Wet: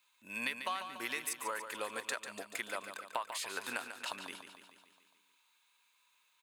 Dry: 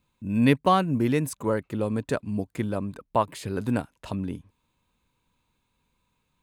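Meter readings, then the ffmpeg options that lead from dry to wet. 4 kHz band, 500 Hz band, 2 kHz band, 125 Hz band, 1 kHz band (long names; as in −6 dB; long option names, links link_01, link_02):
−2.5 dB, −17.5 dB, −2.5 dB, −37.0 dB, −12.5 dB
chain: -filter_complex "[0:a]highpass=1400,acompressor=threshold=-40dB:ratio=16,asplit=2[link_01][link_02];[link_02]aecho=0:1:144|288|432|576|720|864|1008:0.355|0.213|0.128|0.0766|0.046|0.0276|0.0166[link_03];[link_01][link_03]amix=inputs=2:normalize=0,volume=6dB"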